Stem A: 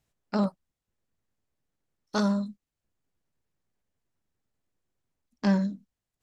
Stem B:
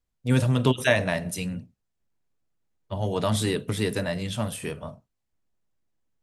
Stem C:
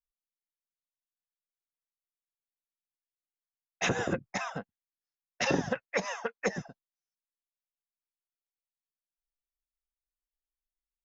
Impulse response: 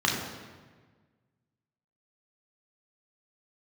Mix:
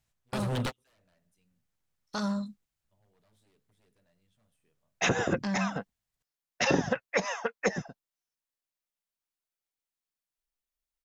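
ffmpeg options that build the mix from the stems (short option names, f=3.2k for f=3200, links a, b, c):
-filter_complex "[0:a]equalizer=f=360:t=o:w=1.7:g=-8.5,volume=0.5dB,asplit=2[a][b];[1:a]aeval=exprs='0.0841*(abs(mod(val(0)/0.0841+3,4)-2)-1)':c=same,volume=-3dB[c];[2:a]adelay=1200,volume=2.5dB[d];[b]apad=whole_len=274516[e];[c][e]sidechaingate=range=-40dB:threshold=-57dB:ratio=16:detection=peak[f];[a][f]amix=inputs=2:normalize=0,alimiter=limit=-22.5dB:level=0:latency=1:release=71,volume=0dB[g];[d][g]amix=inputs=2:normalize=0"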